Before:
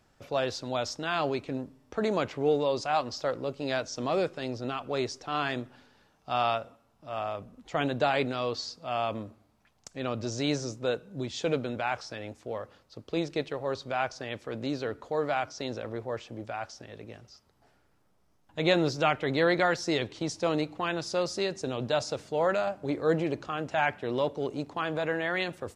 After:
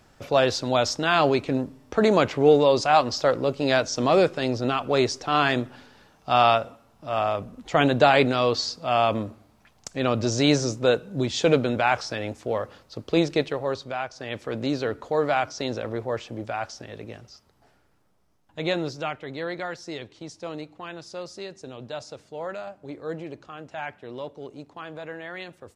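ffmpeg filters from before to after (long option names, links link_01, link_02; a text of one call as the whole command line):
ffmpeg -i in.wav -af "volume=18dB,afade=type=out:start_time=13.22:duration=0.87:silence=0.251189,afade=type=in:start_time=14.09:duration=0.32:silence=0.354813,afade=type=out:start_time=17.03:duration=2.23:silence=0.223872" out.wav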